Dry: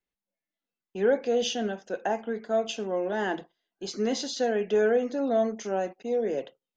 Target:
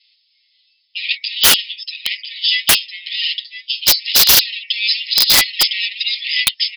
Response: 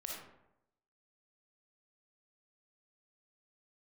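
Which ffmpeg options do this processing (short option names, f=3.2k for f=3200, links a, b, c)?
-filter_complex "[0:a]aecho=1:1:7.5:0.99,asplit=2[a][b];[b]acompressor=threshold=-31dB:ratio=6,volume=0dB[c];[a][c]amix=inputs=2:normalize=0,aeval=exprs='0.398*sin(PI/2*2.82*val(0)/0.398)':c=same,aecho=1:1:1007:0.282,aexciter=amount=8.3:drive=6:freq=2.6k,equalizer=f=2.5k:w=0.86:g=-3.5,afftfilt=real='re*between(b*sr/4096,1800,5300)':imag='im*between(b*sr/4096,1800,5300)':win_size=4096:overlap=0.75,dynaudnorm=f=100:g=13:m=9.5dB,aeval=exprs='(mod(2.11*val(0)+1,2)-1)/2.11':c=same,volume=3.5dB"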